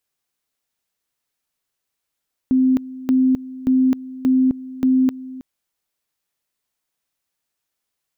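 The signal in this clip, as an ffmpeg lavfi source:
ffmpeg -f lavfi -i "aevalsrc='pow(10,(-12-18*gte(mod(t,0.58),0.26))/20)*sin(2*PI*259*t)':duration=2.9:sample_rate=44100" out.wav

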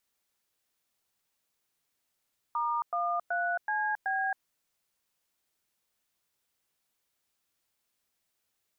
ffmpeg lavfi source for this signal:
ffmpeg -f lavfi -i "aevalsrc='0.0316*clip(min(mod(t,0.377),0.271-mod(t,0.377))/0.002,0,1)*(eq(floor(t/0.377),0)*(sin(2*PI*941*mod(t,0.377))+sin(2*PI*1209*mod(t,0.377)))+eq(floor(t/0.377),1)*(sin(2*PI*697*mod(t,0.377))+sin(2*PI*1209*mod(t,0.377)))+eq(floor(t/0.377),2)*(sin(2*PI*697*mod(t,0.377))+sin(2*PI*1477*mod(t,0.377)))+eq(floor(t/0.377),3)*(sin(2*PI*852*mod(t,0.377))+sin(2*PI*1633*mod(t,0.377)))+eq(floor(t/0.377),4)*(sin(2*PI*770*mod(t,0.377))+sin(2*PI*1633*mod(t,0.377))))':duration=1.885:sample_rate=44100" out.wav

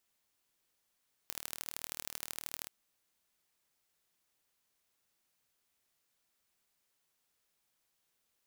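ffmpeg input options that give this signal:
ffmpeg -f lavfi -i "aevalsrc='0.299*eq(mod(n,1140),0)*(0.5+0.5*eq(mod(n,3420),0))':duration=1.38:sample_rate=44100" out.wav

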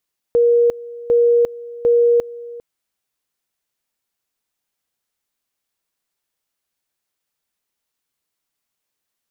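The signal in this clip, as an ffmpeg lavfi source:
ffmpeg -f lavfi -i "aevalsrc='pow(10,(-10-19.5*gte(mod(t,0.75),0.35))/20)*sin(2*PI*474*t)':duration=2.25:sample_rate=44100" out.wav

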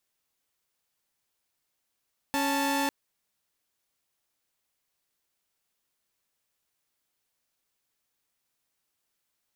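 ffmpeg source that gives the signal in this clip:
ffmpeg -f lavfi -i "aevalsrc='0.0531*((2*mod(277.18*t,1)-1)+(2*mod(880*t,1)-1))':duration=0.55:sample_rate=44100" out.wav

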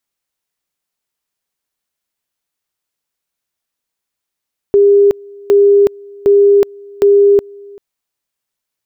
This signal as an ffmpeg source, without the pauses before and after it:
ffmpeg -f lavfi -i "aevalsrc='pow(10,(-4.5-26.5*gte(mod(t,0.76),0.37))/20)*sin(2*PI*403*t)':duration=3.04:sample_rate=44100" out.wav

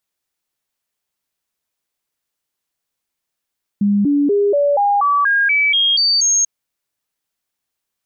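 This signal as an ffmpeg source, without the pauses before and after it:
ffmpeg -f lavfi -i "aevalsrc='0.266*clip(min(mod(t,0.24),0.24-mod(t,0.24))/0.005,0,1)*sin(2*PI*203*pow(2,floor(t/0.24)/2)*mod(t,0.24))':duration=2.64:sample_rate=44100" out.wav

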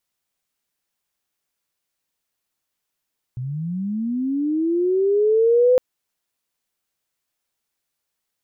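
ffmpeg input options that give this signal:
ffmpeg -f lavfi -i "aevalsrc='pow(10,(-25+14*t/2.41)/20)*sin(2*PI*(120*t+390*t*t/(2*2.41)))':duration=2.41:sample_rate=44100" out.wav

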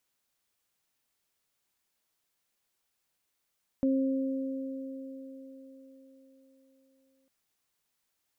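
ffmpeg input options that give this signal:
ffmpeg -f lavfi -i "aevalsrc='0.0708*pow(10,-3*t/4.3)*sin(2*PI*267*t)+0.0282*pow(10,-3*t/4.95)*sin(2*PI*534*t)':duration=3.45:sample_rate=44100" out.wav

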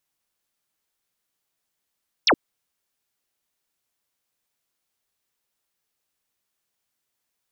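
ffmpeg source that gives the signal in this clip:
ffmpeg -f lavfi -i "aevalsrc='0.211*clip(t/0.002,0,1)*clip((0.07-t)/0.002,0,1)*sin(2*PI*6200*0.07/log(220/6200)*(exp(log(220/6200)*t/0.07)-1))':duration=0.07:sample_rate=44100" out.wav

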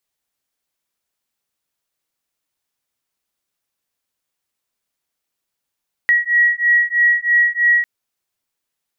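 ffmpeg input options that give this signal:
ffmpeg -f lavfi -i "aevalsrc='0.178*(sin(2*PI*1910*t)+sin(2*PI*1913.1*t))':duration=1.75:sample_rate=44100" out.wav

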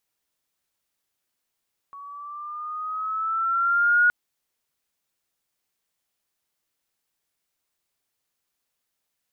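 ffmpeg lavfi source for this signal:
ffmpeg -f lavfi -i "aevalsrc='pow(10,(-14+24*(t/2.17-1))/20)*sin(2*PI*1120*2.17/(4.5*log(2)/12)*(exp(4.5*log(2)/12*t/2.17)-1))':duration=2.17:sample_rate=44100" out.wav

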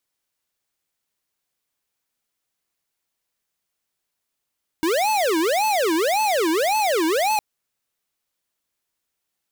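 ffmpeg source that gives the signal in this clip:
ffmpeg -f lavfi -i "aevalsrc='0.1*(2*lt(mod((593*t-278/(2*PI*1.8)*sin(2*PI*1.8*t)),1),0.5)-1)':duration=2.56:sample_rate=44100" out.wav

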